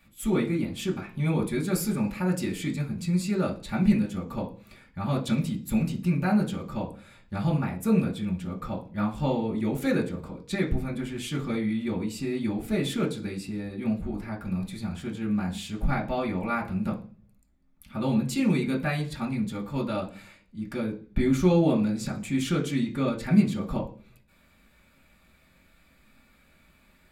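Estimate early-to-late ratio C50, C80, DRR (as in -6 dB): 12.5 dB, 17.5 dB, -3.5 dB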